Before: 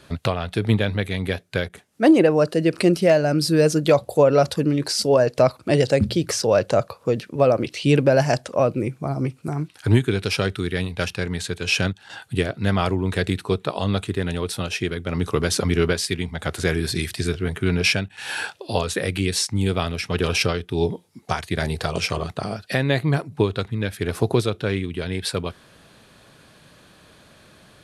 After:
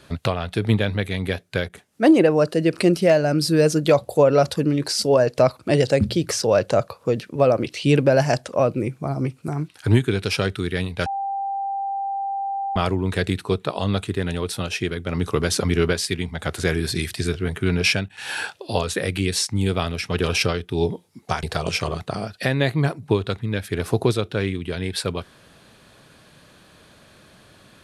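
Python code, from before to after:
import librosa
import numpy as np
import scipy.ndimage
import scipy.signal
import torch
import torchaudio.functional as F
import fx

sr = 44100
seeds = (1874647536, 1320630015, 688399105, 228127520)

y = fx.edit(x, sr, fx.bleep(start_s=11.06, length_s=1.7, hz=789.0, db=-23.0),
    fx.cut(start_s=21.43, length_s=0.29), tone=tone)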